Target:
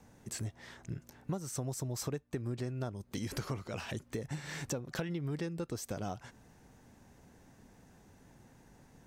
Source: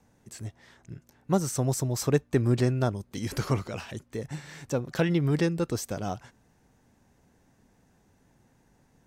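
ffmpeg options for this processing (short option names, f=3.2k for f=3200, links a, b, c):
-af "acompressor=threshold=-39dB:ratio=8,volume=4dB"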